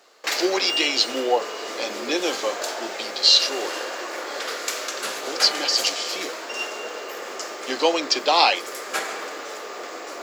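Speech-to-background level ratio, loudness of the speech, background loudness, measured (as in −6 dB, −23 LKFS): 7.5 dB, −21.5 LKFS, −29.0 LKFS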